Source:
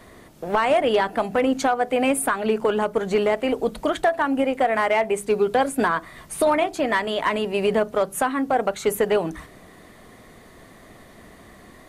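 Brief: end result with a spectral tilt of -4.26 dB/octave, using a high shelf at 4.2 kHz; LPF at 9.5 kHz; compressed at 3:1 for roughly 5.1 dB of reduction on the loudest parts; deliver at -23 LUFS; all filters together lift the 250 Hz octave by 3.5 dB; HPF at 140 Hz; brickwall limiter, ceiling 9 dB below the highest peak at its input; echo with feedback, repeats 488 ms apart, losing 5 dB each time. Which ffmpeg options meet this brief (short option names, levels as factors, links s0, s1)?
-af "highpass=140,lowpass=9500,equalizer=f=250:t=o:g=4.5,highshelf=f=4200:g=-7,acompressor=threshold=0.0891:ratio=3,alimiter=limit=0.106:level=0:latency=1,aecho=1:1:488|976|1464|1952|2440|2928|3416:0.562|0.315|0.176|0.0988|0.0553|0.031|0.0173,volume=1.78"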